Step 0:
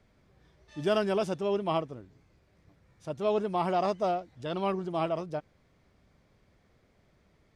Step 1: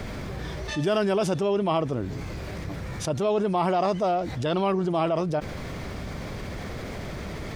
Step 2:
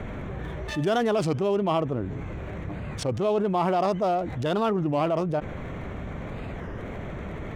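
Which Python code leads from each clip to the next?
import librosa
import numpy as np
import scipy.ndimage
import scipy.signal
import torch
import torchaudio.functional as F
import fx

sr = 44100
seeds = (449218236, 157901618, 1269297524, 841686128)

y1 = fx.env_flatten(x, sr, amount_pct=70)
y1 = y1 * 10.0 ** (1.5 / 20.0)
y2 = fx.wiener(y1, sr, points=9)
y2 = fx.record_warp(y2, sr, rpm=33.33, depth_cents=250.0)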